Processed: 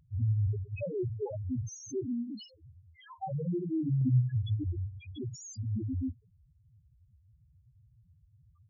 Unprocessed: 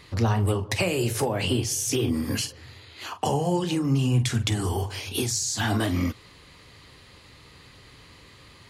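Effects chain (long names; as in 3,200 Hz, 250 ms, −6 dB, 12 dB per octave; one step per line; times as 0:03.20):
0:01.91–0:02.64: low-shelf EQ 100 Hz −11.5 dB
spectral peaks only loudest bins 1
0:04.01–0:04.64: dynamic equaliser 330 Hz, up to +5 dB, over −45 dBFS, Q 0.78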